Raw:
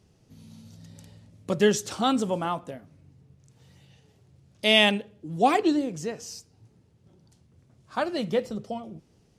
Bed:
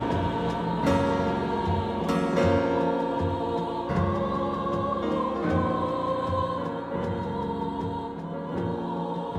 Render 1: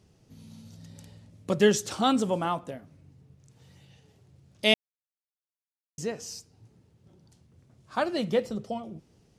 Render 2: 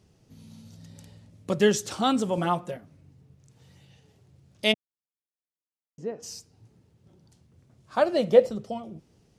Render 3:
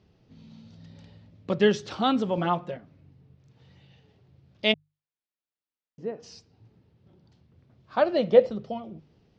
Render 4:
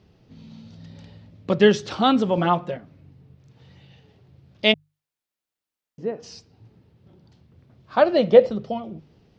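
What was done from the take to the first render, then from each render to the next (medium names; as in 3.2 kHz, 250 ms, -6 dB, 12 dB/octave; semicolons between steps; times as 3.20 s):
4.74–5.98 s: mute
2.37–2.77 s: comb 5.5 ms, depth 100%; 4.71–6.22 s: band-pass filter 160 Hz -> 450 Hz, Q 0.7; 7.95–8.48 s: peaking EQ 580 Hz +6.5 dB -> +15 dB
low-pass 4.5 kHz 24 dB/octave; hum notches 50/100/150 Hz
trim +5.5 dB; peak limiter -2 dBFS, peak gain reduction 2 dB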